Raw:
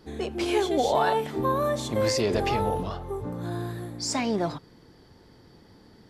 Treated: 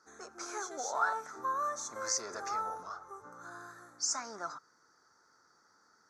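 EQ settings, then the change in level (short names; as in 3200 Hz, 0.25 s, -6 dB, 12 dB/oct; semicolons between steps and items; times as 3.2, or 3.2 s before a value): double band-pass 2900 Hz, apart 2.2 oct; +5.5 dB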